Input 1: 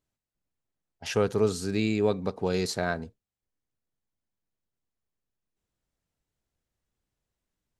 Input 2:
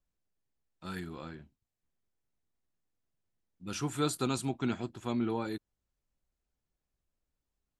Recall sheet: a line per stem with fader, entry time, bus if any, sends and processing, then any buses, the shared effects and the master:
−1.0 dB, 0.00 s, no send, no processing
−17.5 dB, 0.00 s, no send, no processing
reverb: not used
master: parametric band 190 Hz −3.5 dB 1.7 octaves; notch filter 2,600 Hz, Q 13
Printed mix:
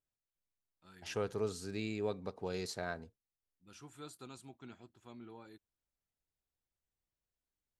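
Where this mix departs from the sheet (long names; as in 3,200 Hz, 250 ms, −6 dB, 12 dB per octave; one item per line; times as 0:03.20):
stem 1 −1.0 dB → −10.5 dB
master: missing notch filter 2,600 Hz, Q 13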